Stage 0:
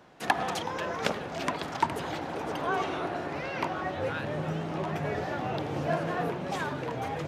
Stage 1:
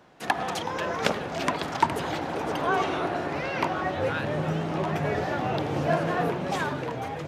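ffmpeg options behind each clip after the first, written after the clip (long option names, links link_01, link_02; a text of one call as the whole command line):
ffmpeg -i in.wav -af "dynaudnorm=framelen=110:gausssize=11:maxgain=4.5dB" out.wav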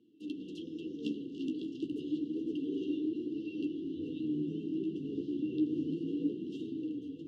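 ffmpeg -i in.wav -filter_complex "[0:a]afftfilt=real='re*(1-between(b*sr/4096,510,2700))':imag='im*(1-between(b*sr/4096,510,2700))':win_size=4096:overlap=0.75,flanger=delay=8.6:depth=7.2:regen=39:speed=0.3:shape=triangular,asplit=3[link_01][link_02][link_03];[link_01]bandpass=frequency=300:width_type=q:width=8,volume=0dB[link_04];[link_02]bandpass=frequency=870:width_type=q:width=8,volume=-6dB[link_05];[link_03]bandpass=frequency=2240:width_type=q:width=8,volume=-9dB[link_06];[link_04][link_05][link_06]amix=inputs=3:normalize=0,volume=8.5dB" out.wav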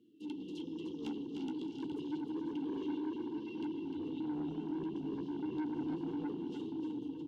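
ffmpeg -i in.wav -af "asoftclip=type=tanh:threshold=-34.5dB,aecho=1:1:302:0.422" out.wav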